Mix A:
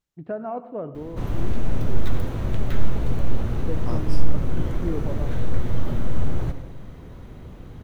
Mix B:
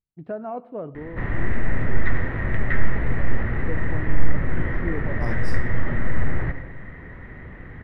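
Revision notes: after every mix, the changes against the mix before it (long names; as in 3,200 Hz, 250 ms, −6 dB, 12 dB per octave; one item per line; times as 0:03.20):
first voice: send −7.5 dB
second voice: entry +1.35 s
background: add low-pass with resonance 1,900 Hz, resonance Q 12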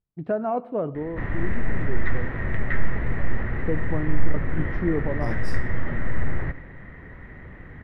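first voice +6.0 dB
background: send −10.0 dB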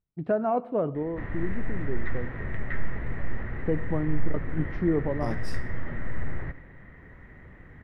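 background −6.5 dB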